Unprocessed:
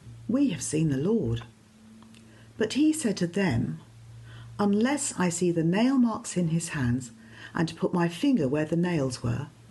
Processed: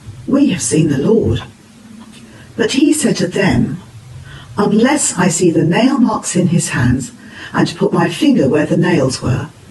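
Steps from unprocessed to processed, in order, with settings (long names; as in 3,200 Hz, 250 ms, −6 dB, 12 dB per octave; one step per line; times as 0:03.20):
random phases in long frames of 50 ms
low-shelf EQ 200 Hz −4 dB
boost into a limiter +16.5 dB
level −1 dB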